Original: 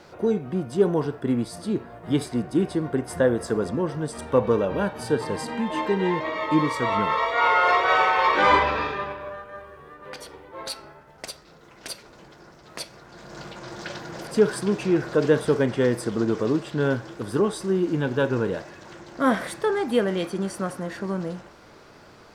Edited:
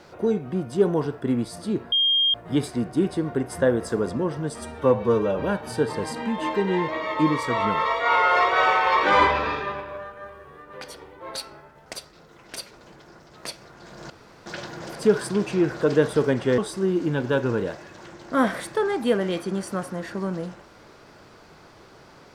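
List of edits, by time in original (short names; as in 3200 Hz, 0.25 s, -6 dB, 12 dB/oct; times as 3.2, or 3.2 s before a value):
1.92 add tone 3220 Hz -17 dBFS 0.42 s
4.16–4.68 stretch 1.5×
13.42–13.78 room tone
15.9–17.45 cut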